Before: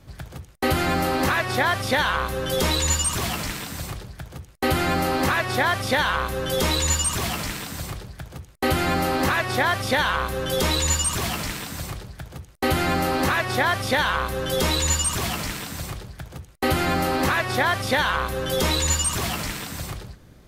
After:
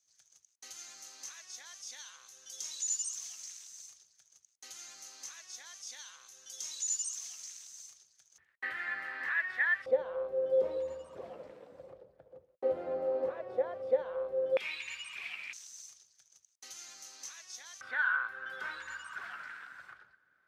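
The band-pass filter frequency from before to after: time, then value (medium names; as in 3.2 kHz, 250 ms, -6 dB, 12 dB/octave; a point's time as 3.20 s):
band-pass filter, Q 11
6.3 kHz
from 8.38 s 1.8 kHz
from 9.86 s 520 Hz
from 14.57 s 2.4 kHz
from 15.53 s 6.2 kHz
from 17.81 s 1.5 kHz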